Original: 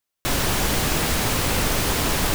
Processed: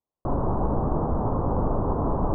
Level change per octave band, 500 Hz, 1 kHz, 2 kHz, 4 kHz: 0.0 dB, -1.5 dB, -27.5 dB, under -40 dB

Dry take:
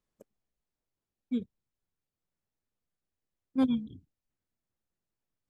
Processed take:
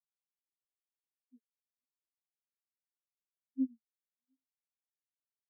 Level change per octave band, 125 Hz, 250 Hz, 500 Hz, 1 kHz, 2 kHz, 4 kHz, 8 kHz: under -25 dB, -9.5 dB, under -25 dB, under -40 dB, under -30 dB, under -30 dB, no reading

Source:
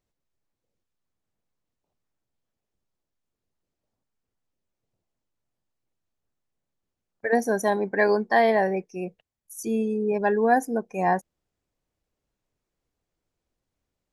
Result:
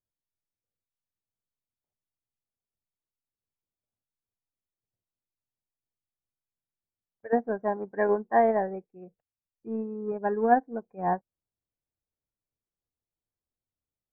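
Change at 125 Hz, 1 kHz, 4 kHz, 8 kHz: no reading, -2.5 dB, under -25 dB, under -35 dB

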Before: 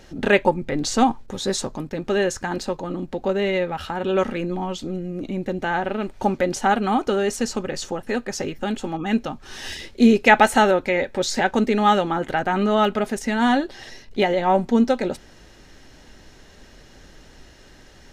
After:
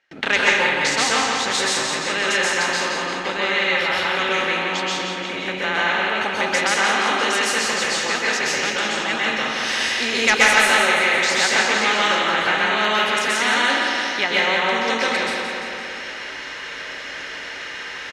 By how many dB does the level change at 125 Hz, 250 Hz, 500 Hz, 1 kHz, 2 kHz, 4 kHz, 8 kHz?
-7.5 dB, -8.5 dB, -3.0 dB, +1.0 dB, +9.5 dB, +11.5 dB, +8.5 dB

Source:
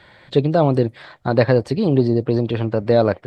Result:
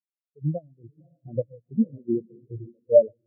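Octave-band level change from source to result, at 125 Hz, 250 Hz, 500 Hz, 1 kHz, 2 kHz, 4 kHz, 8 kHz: -14.5 dB, -10.0 dB, -6.5 dB, under -25 dB, under -40 dB, under -40 dB, no reading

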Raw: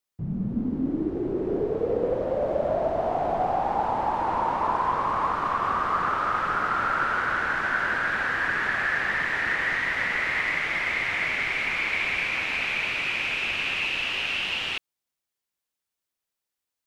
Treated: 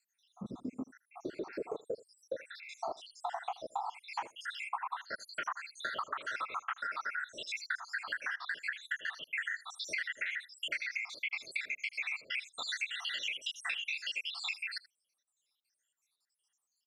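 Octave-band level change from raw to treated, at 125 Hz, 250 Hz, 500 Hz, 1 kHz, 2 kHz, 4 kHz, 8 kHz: under -20 dB, -18.0 dB, -17.5 dB, -16.0 dB, -12.5 dB, -7.5 dB, no reading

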